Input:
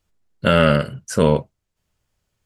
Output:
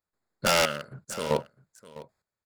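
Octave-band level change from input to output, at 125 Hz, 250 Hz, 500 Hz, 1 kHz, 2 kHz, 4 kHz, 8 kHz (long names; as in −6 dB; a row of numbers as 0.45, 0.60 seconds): −18.0, −17.0, −10.5, −6.5, −6.0, −2.5, +2.0 decibels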